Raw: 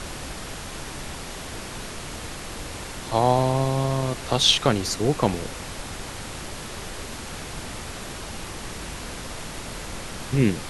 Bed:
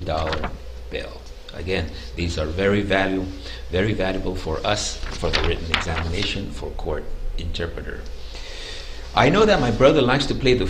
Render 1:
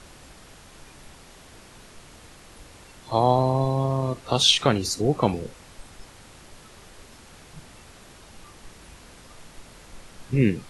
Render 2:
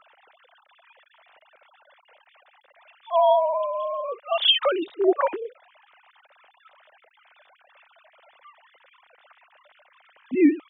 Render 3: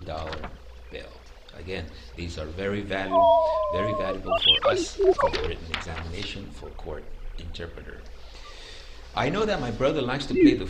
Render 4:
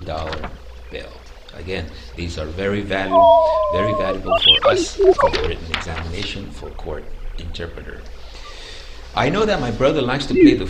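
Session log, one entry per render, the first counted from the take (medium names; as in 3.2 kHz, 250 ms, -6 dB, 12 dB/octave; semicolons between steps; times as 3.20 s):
noise print and reduce 13 dB
formants replaced by sine waves
add bed -9.5 dB
trim +7.5 dB; peak limiter -1 dBFS, peak gain reduction 1.5 dB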